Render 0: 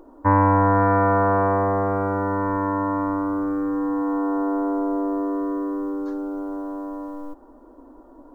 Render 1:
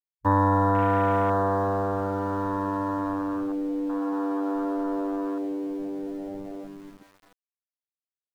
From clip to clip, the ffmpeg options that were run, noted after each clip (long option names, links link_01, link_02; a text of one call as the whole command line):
ffmpeg -i in.wav -af "aeval=exprs='val(0)*gte(abs(val(0)),0.0376)':channel_layout=same,afwtdn=0.0562,volume=-4dB" out.wav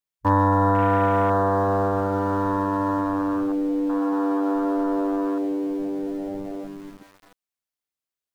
ffmpeg -i in.wav -filter_complex "[0:a]asplit=2[link_01][link_02];[link_02]alimiter=limit=-20.5dB:level=0:latency=1,volume=-2.5dB[link_03];[link_01][link_03]amix=inputs=2:normalize=0,asoftclip=type=hard:threshold=-10dB" out.wav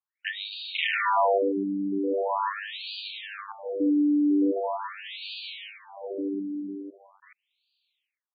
ffmpeg -i in.wav -af "aexciter=amount=5.9:drive=9.2:freq=2200,afftfilt=real='re*between(b*sr/1024,250*pow(3400/250,0.5+0.5*sin(2*PI*0.42*pts/sr))/1.41,250*pow(3400/250,0.5+0.5*sin(2*PI*0.42*pts/sr))*1.41)':imag='im*between(b*sr/1024,250*pow(3400/250,0.5+0.5*sin(2*PI*0.42*pts/sr))/1.41,250*pow(3400/250,0.5+0.5*sin(2*PI*0.42*pts/sr))*1.41)':win_size=1024:overlap=0.75,volume=2dB" out.wav